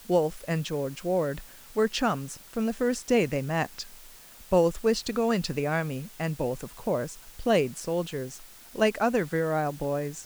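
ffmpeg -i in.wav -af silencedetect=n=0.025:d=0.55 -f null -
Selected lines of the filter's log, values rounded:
silence_start: 3.82
silence_end: 4.52 | silence_duration: 0.69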